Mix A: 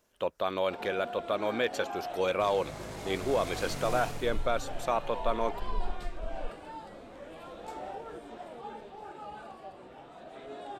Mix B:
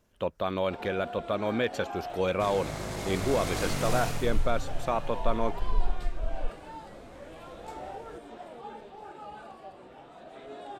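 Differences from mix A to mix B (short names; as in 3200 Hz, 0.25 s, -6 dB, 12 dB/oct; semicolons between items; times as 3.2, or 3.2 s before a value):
speech: add tone controls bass +11 dB, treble -3 dB; second sound +7.0 dB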